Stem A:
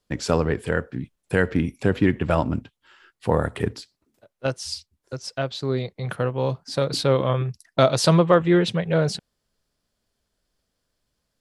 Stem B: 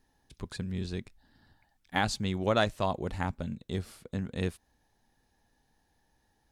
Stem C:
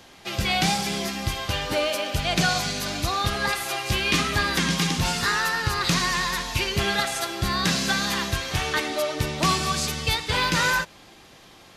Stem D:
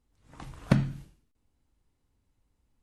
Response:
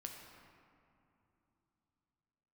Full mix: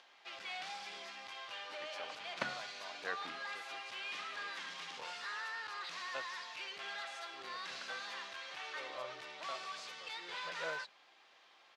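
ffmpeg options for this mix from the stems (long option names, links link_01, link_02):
-filter_complex "[0:a]aeval=exprs='val(0)*pow(10,-25*(0.5-0.5*cos(2*PI*0.67*n/s))/20)':channel_layout=same,adelay=1700,volume=-14.5dB[link_01];[1:a]alimiter=limit=-19.5dB:level=0:latency=1,volume=-17dB[link_02];[2:a]asoftclip=type=tanh:threshold=-26dB,volume=-12dB[link_03];[3:a]adelay=1700,volume=-4dB[link_04];[link_01][link_02][link_03][link_04]amix=inputs=4:normalize=0,acompressor=mode=upward:threshold=-57dB:ratio=2.5,highpass=760,lowpass=3900"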